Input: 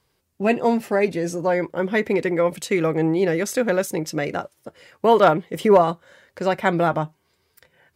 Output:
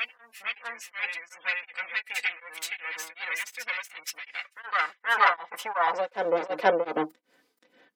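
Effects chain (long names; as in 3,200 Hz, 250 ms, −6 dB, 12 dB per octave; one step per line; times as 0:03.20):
lower of the sound and its delayed copy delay 4 ms
gate on every frequency bin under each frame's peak −30 dB strong
soft clipping −5.5 dBFS, distortion −26 dB
high-pass filter sweep 2,200 Hz → 280 Hz, 0:04.74–0:07.36
backwards echo 477 ms −5.5 dB
tremolo along a rectified sine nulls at 2.7 Hz
level −1 dB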